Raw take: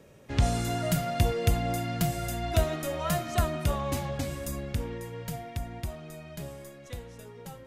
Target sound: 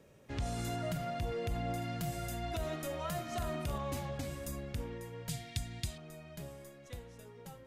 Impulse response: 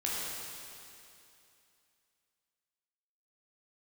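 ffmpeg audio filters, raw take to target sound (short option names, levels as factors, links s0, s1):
-filter_complex "[0:a]asettb=1/sr,asplit=3[s0][s1][s2];[s0]atrim=end=0.764[s3];[s1]atrim=start=0.76:end=1.82,asetpts=PTS-STARTPTS,afade=t=in:d=0.004:c=qsin,afade=t=out:st=1.056:d=0.004:c=qsin,highshelf=f=5200:g=-7.5[s4];[s2]atrim=start=1.816[s5];[s3][s4]acrossfade=d=0.004:c1=hsin:c2=qsin[s6];[s6][s5]acrossfade=d=0.004:c1=qsin:c2=hsin,asettb=1/sr,asplit=3[s7][s8][s9];[s7]atrim=end=3.274[s10];[s8]atrim=start=3.27:end=3.78,asetpts=PTS-STARTPTS,afade=t=in:d=0.004:c=qsin,afade=t=out:st=0.506:d=0.004:c=qsin,asplit=2[s11][s12];[s12]adelay=43,volume=0.596[s13];[s11][s13]amix=inputs=2:normalize=0,atrim=end_sample=22491[s14];[s9]atrim=start=3.776[s15];[s10][s14]acrossfade=d=0.004:c1=hsin:c2=qsin[s16];[s16][s15]acrossfade=d=0.004:c1=qsin:c2=hsin,alimiter=limit=0.0841:level=0:latency=1:release=35,asettb=1/sr,asplit=3[s17][s18][s19];[s17]atrim=end=5.294[s20];[s18]atrim=start=5.29:end=5.98,asetpts=PTS-STARTPTS,afade=t=in:d=0.004:c=qsin,afade=t=out:st=0.686:d=0.004:c=qsin,equalizer=f=125:t=o:w=1:g=5,equalizer=f=500:t=o:w=1:g=-5,equalizer=f=1000:t=o:w=1:g=-6,equalizer=f=2000:t=o:w=1:g=3,equalizer=f=4000:t=o:w=1:g=12,equalizer=f=8000:t=o:w=1:g=10[s21];[s19]atrim=start=5.976[s22];[s20][s21]acrossfade=d=0.004:c1=hsin:c2=qsin[s23];[s23][s22]acrossfade=d=0.004:c1=qsin:c2=hsin,volume=0.473"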